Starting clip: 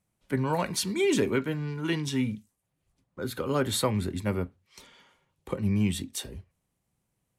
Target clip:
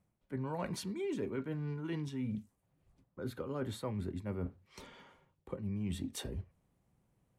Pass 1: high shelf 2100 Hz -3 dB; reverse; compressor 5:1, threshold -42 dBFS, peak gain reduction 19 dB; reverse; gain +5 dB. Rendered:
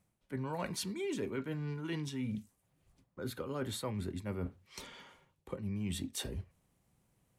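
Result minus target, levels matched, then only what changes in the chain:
4000 Hz band +5.0 dB
change: high shelf 2100 Hz -12.5 dB

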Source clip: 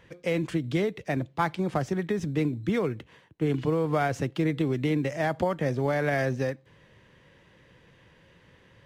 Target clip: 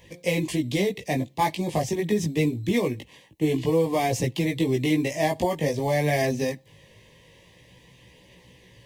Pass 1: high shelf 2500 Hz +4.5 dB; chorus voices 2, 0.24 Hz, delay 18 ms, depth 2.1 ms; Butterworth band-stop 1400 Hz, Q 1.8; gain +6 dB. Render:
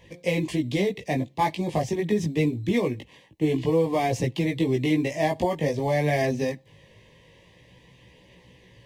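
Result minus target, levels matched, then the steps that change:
8000 Hz band -5.5 dB
add after Butterworth band-stop: high shelf 6200 Hz +10 dB

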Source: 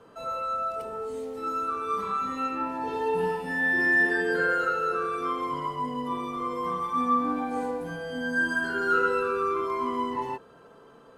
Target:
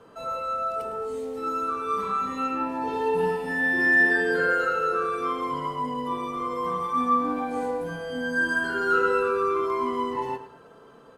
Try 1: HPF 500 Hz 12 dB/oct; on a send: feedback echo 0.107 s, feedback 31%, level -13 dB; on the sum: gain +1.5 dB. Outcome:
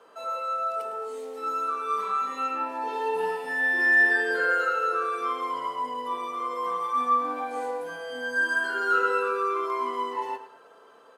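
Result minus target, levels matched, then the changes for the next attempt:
500 Hz band -3.0 dB
remove: HPF 500 Hz 12 dB/oct

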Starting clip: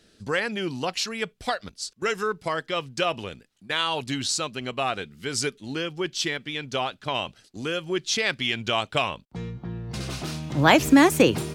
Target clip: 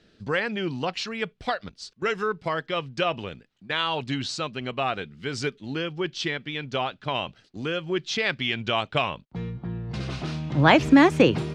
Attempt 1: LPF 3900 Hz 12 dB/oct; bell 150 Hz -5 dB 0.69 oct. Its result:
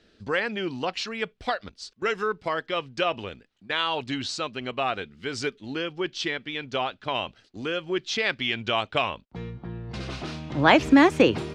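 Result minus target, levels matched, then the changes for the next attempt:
125 Hz band -6.0 dB
change: bell 150 Hz +3 dB 0.69 oct

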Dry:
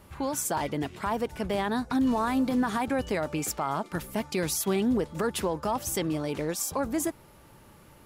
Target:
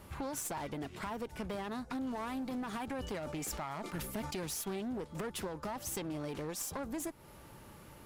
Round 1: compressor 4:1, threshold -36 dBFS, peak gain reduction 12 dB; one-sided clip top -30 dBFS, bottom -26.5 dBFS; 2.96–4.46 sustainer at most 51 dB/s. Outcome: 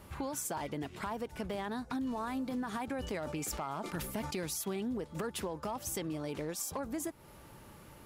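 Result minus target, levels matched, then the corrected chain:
one-sided clip: distortion -13 dB
compressor 4:1, threshold -36 dBFS, peak gain reduction 12 dB; one-sided clip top -38.5 dBFS, bottom -26.5 dBFS; 2.96–4.46 sustainer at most 51 dB/s

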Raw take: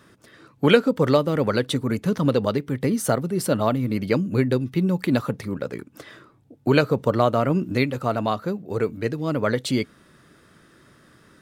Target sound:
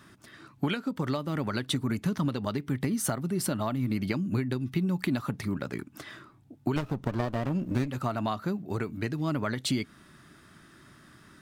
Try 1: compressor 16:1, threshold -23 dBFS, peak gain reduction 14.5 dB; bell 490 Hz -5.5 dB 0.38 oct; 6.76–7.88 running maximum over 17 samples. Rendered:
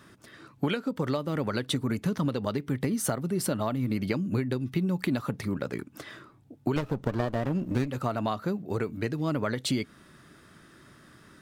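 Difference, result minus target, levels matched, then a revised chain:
500 Hz band +2.5 dB
compressor 16:1, threshold -23 dBFS, peak gain reduction 14.5 dB; bell 490 Hz -13.5 dB 0.38 oct; 6.76–7.88 running maximum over 17 samples

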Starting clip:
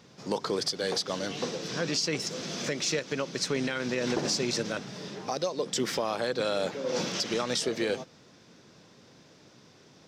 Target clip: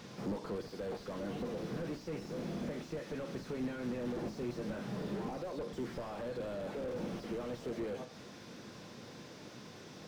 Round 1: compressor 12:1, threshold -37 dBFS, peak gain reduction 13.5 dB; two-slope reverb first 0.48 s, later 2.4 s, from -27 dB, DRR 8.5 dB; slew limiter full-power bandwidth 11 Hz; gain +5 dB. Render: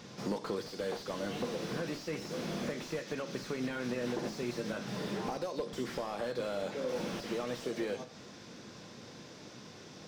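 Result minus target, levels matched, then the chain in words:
slew limiter: distortion -7 dB
compressor 12:1, threshold -37 dBFS, peak gain reduction 13.5 dB; two-slope reverb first 0.48 s, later 2.4 s, from -27 dB, DRR 8.5 dB; slew limiter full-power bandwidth 4 Hz; gain +5 dB

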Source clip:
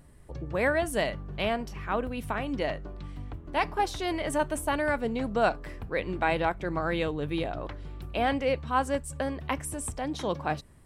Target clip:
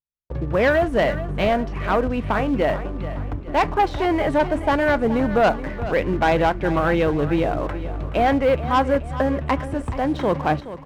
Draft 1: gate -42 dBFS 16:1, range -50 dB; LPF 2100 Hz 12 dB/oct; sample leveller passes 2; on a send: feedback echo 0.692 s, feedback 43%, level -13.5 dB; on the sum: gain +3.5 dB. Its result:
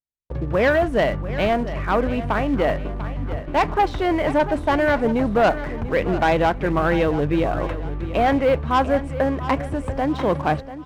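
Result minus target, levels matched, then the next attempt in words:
echo 0.267 s late
gate -42 dBFS 16:1, range -50 dB; LPF 2100 Hz 12 dB/oct; sample leveller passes 2; on a send: feedback echo 0.425 s, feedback 43%, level -13.5 dB; on the sum: gain +3.5 dB

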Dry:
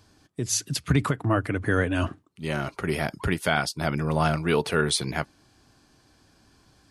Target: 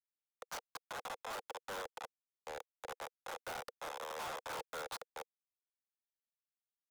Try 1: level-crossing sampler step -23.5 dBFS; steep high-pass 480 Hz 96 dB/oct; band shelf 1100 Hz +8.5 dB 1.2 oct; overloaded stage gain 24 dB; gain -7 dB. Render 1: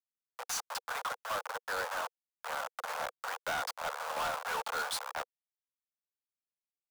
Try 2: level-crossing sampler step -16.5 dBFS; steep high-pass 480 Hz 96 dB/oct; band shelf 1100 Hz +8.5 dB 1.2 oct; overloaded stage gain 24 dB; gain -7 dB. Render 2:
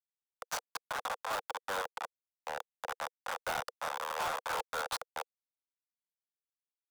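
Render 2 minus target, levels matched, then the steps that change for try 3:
overloaded stage: distortion -4 dB
change: overloaded stage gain 34 dB

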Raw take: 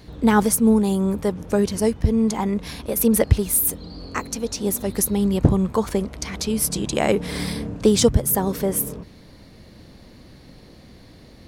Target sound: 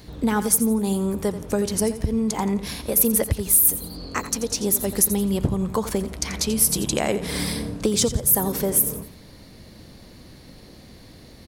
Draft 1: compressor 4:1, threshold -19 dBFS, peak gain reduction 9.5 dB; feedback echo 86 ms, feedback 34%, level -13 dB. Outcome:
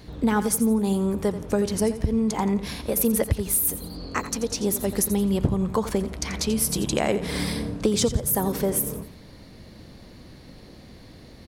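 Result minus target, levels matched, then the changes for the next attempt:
8000 Hz band -3.0 dB
add after compressor: high shelf 6000 Hz +8 dB

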